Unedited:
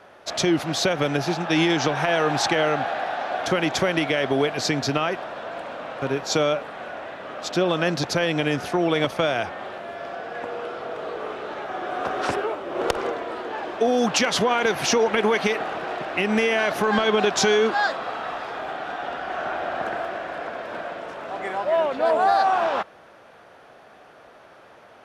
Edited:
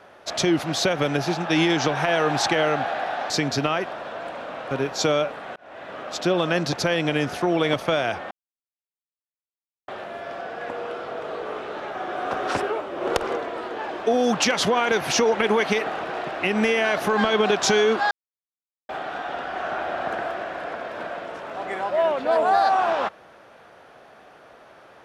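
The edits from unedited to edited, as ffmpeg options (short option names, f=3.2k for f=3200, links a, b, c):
-filter_complex "[0:a]asplit=6[a][b][c][d][e][f];[a]atrim=end=3.302[g];[b]atrim=start=4.608:end=6.87,asetpts=PTS-STARTPTS,afade=t=out:st=2.258:d=0.004:c=hsin[h];[c]atrim=start=6.87:end=9.62,asetpts=PTS-STARTPTS,afade=t=in:d=0.34,afade=t=out:st=2.746:d=0.004:c=hsin,apad=pad_dur=1.57[i];[d]atrim=start=9.62:end=17.85,asetpts=PTS-STARTPTS,afade=t=in:d=0.004:c=hsin,afade=t=out:st=8.226:d=0.004:c=hsin[j];[e]atrim=start=17.85:end=18.63,asetpts=PTS-STARTPTS,volume=0[k];[f]atrim=start=18.63,asetpts=PTS-STARTPTS,afade=t=in:d=0.004:c=hsin[l];[h][i][j][k][l]concat=n=5:v=0:a=1[m];[g][m]acrossfade=d=0.004:c1=hsin:c2=hsin"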